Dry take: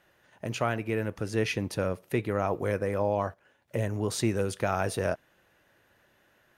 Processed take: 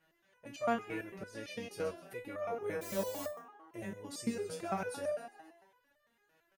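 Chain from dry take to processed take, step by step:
echo with shifted repeats 133 ms, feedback 47%, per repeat +75 Hz, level −11 dB
0:02.81–0:03.27: bit-depth reduction 6 bits, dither triangular
step-sequenced resonator 8.9 Hz 160–600 Hz
level +4 dB

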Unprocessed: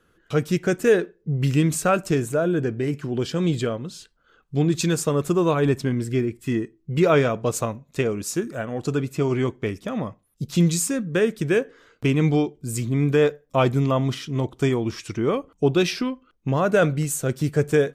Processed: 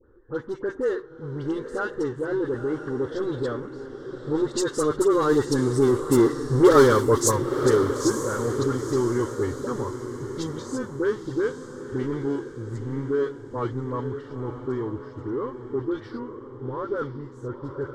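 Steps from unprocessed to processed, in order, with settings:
source passing by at 0:06.54, 20 m/s, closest 7.4 metres
power curve on the samples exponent 0.7
in parallel at −3 dB: downward compressor, threshold −34 dBFS, peak gain reduction 19 dB
on the sum: soft clipping −14 dBFS, distortion −16 dB
all-pass dispersion highs, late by 65 ms, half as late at 1,500 Hz
low-pass that shuts in the quiet parts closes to 740 Hz, open at −20 dBFS
phaser with its sweep stopped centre 670 Hz, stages 6
on a send: feedback delay with all-pass diffusion 934 ms, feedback 44%, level −9.5 dB
on the sum: level +7 dB

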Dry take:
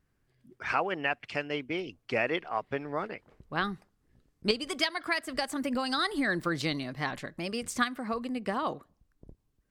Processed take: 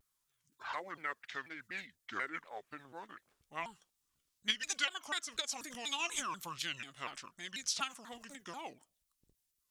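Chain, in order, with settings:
formants moved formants −6 semitones
first-order pre-emphasis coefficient 0.97
pitch modulation by a square or saw wave saw down 4.1 Hz, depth 250 cents
level +6 dB

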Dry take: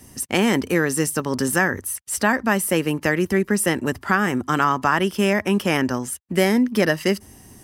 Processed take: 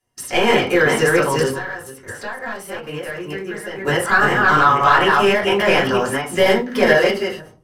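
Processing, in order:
delay that plays each chunk backwards 239 ms, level −2 dB
drawn EQ curve 290 Hz 0 dB, 490 Hz +7 dB, 2,100 Hz +12 dB
log-companded quantiser 6 bits
soft clipping −2.5 dBFS, distortion −17 dB
high-shelf EQ 5,900 Hz −7 dB
0:01.48–0:03.85: downward compressor 12 to 1, threshold −23 dBFS, peak gain reduction 16 dB
noise gate −32 dBFS, range −29 dB
convolution reverb RT60 0.30 s, pre-delay 3 ms, DRR −7.5 dB
every ending faded ahead of time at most 100 dB per second
level −10 dB

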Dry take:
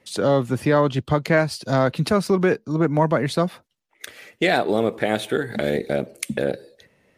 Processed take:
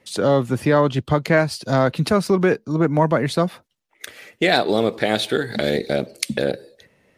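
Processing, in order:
0:04.52–0:06.52: parametric band 4,500 Hz +11 dB 0.78 octaves
level +1.5 dB

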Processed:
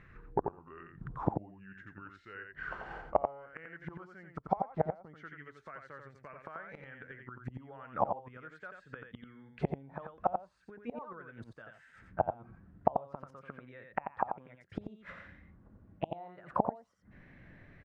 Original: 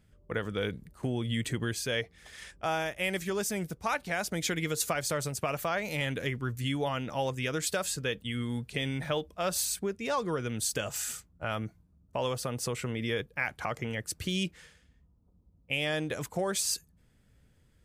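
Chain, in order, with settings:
gliding playback speed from 80% → 120%
gate with flip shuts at −26 dBFS, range −30 dB
parametric band 66 Hz −10 dB 0.67 octaves
single-tap delay 88 ms −5.5 dB
envelope-controlled low-pass 800–2,100 Hz down, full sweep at −45.5 dBFS
level +8.5 dB

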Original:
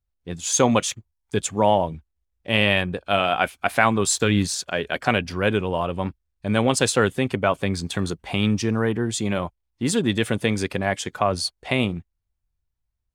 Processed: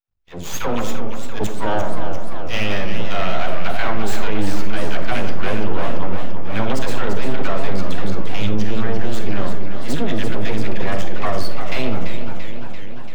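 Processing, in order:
all-pass dispersion lows, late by 85 ms, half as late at 600 Hz
half-wave rectification
parametric band 9,800 Hz −12.5 dB 1.7 octaves
convolution reverb RT60 1.0 s, pre-delay 5 ms, DRR 7.5 dB
boost into a limiter +11.5 dB
feedback echo with a swinging delay time 344 ms, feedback 68%, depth 148 cents, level −8 dB
level −7.5 dB

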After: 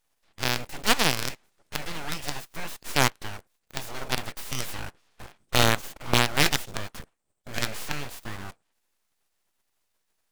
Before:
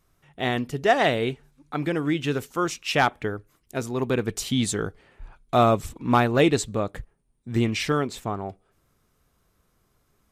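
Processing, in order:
ceiling on every frequency bin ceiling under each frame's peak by 22 dB
in parallel at −6 dB: log-companded quantiser 2 bits
on the sum: harmonic generator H 2 −6 dB, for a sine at 1.5 dBFS
full-wave rectification
formants moved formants −2 semitones
level −8 dB

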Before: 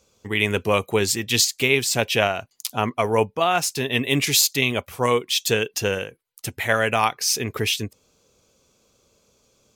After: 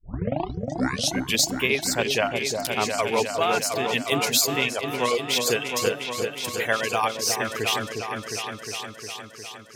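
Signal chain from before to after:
turntable start at the beginning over 1.43 s
reverb reduction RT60 0.75 s
high-pass filter 210 Hz 6 dB per octave
reverb reduction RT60 0.65 s
tuned comb filter 370 Hz, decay 0.9 s, mix 40%
echo whose low-pass opens from repeat to repeat 357 ms, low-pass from 750 Hz, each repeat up 2 octaves, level −3 dB
level +2 dB

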